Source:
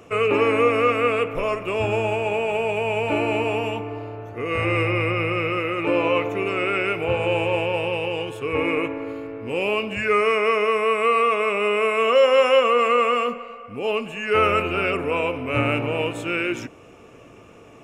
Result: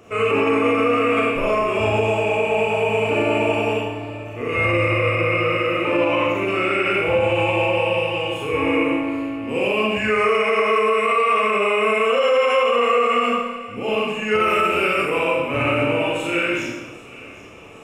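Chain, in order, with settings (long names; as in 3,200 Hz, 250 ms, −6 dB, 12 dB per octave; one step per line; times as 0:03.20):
0:14.40–0:15.14: high-shelf EQ 6,400 Hz +11 dB
four-comb reverb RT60 0.95 s, combs from 29 ms, DRR −5 dB
brickwall limiter −7.5 dBFS, peak gain reduction 9 dB
delay with a high-pass on its return 784 ms, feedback 66%, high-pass 2,000 Hz, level −18 dB
level −2 dB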